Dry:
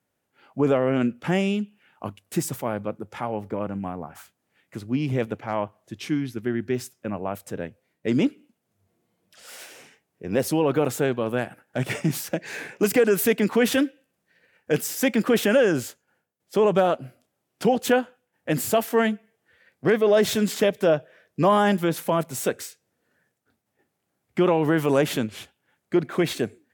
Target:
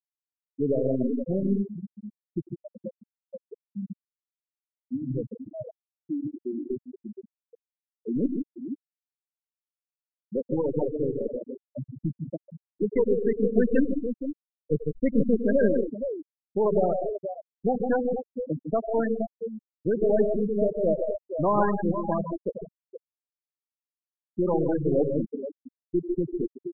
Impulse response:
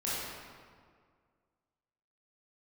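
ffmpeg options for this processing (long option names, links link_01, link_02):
-filter_complex "[0:a]aeval=exprs='0.447*(cos(1*acos(clip(val(0)/0.447,-1,1)))-cos(1*PI/2))+0.0501*(cos(4*acos(clip(val(0)/0.447,-1,1)))-cos(4*PI/2))':channel_layout=same,asettb=1/sr,asplit=3[link_01][link_02][link_03];[link_01]atrim=end=13.584[link_04];[link_02]atrim=start=13.58:end=15.26,asetpts=PTS-STARTPTS,afade=type=in:duration=0.004:curve=qsin,afade=type=out:start_time=1.676:duration=0.004:curve=qsin,lowshelf=frequency=180:gain=8[link_05];[link_03]atrim=start=15.256[link_06];[link_04][link_05]acrossfade=duration=0.004:curve1=hsin:curve2=qsin[link_07];[link_07][link_06]acrossfade=duration=0.004:curve1=qsin:curve2=hsin,aecho=1:1:92|133|153|189|232|472:0.316|0.237|0.531|0.126|0.2|0.473,afftfilt=real='re*gte(hypot(re,im),0.398)':imag='im*gte(hypot(re,im),0.398)':win_size=1024:overlap=0.75,volume=-5dB"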